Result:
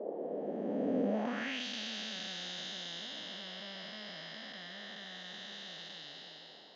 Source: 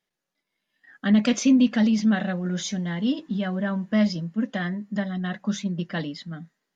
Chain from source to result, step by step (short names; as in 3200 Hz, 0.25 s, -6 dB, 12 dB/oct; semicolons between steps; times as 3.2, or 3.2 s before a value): time blur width 1.12 s; bell 690 Hz +4.5 dB 1.6 oct; band noise 220–740 Hz -43 dBFS; band-pass sweep 470 Hz -> 3800 Hz, 1.07–1.65; gain +7 dB